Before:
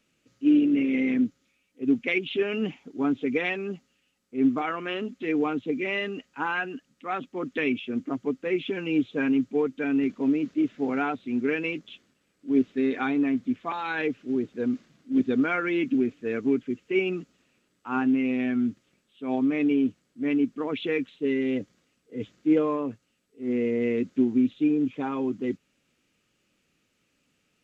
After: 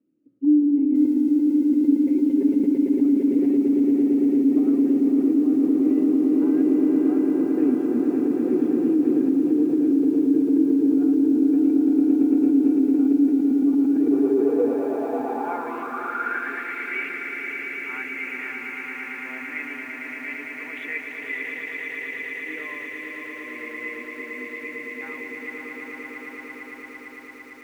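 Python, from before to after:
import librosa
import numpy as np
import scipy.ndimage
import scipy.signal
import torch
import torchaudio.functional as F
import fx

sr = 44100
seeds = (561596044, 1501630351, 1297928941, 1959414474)

p1 = scipy.signal.sosfilt(scipy.signal.butter(4, 65.0, 'highpass', fs=sr, output='sos'), x)
p2 = fx.tilt_eq(p1, sr, slope=-1.5)
p3 = p2 + fx.echo_swell(p2, sr, ms=113, loudest=8, wet_db=-6, dry=0)
p4 = fx.filter_sweep_bandpass(p3, sr, from_hz=300.0, to_hz=2000.0, start_s=13.93, end_s=16.76, q=7.1)
p5 = fx.over_compress(p4, sr, threshold_db=-27.0, ratio=-0.5)
p6 = p4 + F.gain(torch.from_numpy(p5), 1.0).numpy()
y = fx.echo_crushed(p6, sr, ms=529, feedback_pct=35, bits=8, wet_db=-9)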